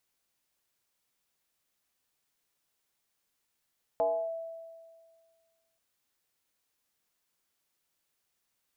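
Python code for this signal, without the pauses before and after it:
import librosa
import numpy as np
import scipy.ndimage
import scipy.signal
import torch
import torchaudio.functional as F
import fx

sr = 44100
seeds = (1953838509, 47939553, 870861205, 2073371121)

y = fx.fm2(sr, length_s=1.78, level_db=-23, carrier_hz=659.0, ratio=0.28, index=0.86, index_s=0.31, decay_s=1.82, shape='linear')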